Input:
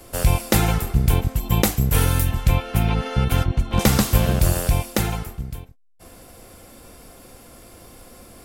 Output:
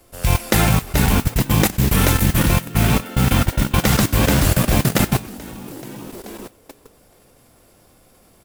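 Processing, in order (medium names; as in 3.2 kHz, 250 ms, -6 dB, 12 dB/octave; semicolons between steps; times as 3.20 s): frequency-shifting echo 432 ms, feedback 46%, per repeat +76 Hz, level -3.5 dB; level held to a coarse grid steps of 19 dB; modulation noise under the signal 14 dB; dynamic bell 1.9 kHz, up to +4 dB, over -45 dBFS, Q 0.94; trim +4 dB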